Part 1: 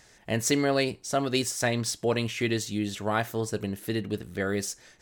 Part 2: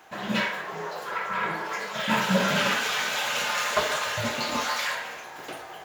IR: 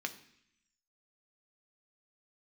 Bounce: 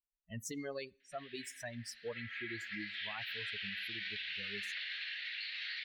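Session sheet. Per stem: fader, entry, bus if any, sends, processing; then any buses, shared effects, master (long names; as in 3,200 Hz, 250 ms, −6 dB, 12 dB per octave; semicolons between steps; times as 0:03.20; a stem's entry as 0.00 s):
−11.5 dB, 0.00 s, send −19.5 dB, spectral dynamics exaggerated over time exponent 3
0:01.83 −17.5 dB → 0:02.51 −6 dB, 1.00 s, send −7.5 dB, elliptic band-pass filter 1,800–4,300 Hz, stop band 40 dB; downward compressor 2.5 to 1, threshold −37 dBFS, peak gain reduction 8 dB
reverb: on, RT60 0.70 s, pre-delay 3 ms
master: brickwall limiter −32.5 dBFS, peak gain reduction 8 dB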